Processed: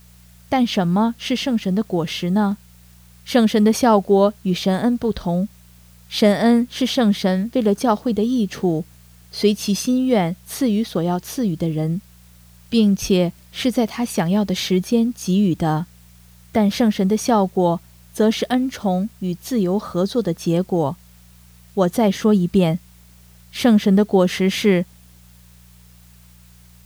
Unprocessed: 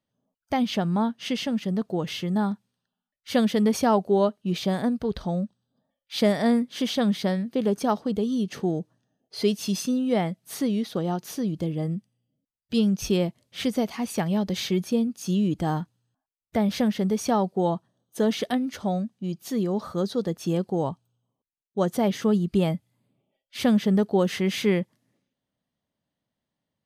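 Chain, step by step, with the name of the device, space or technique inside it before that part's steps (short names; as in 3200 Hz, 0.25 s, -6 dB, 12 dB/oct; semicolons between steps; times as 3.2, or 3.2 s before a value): video cassette with head-switching buzz (buzz 60 Hz, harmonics 3, -55 dBFS -3 dB/oct; white noise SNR 34 dB); gain +6.5 dB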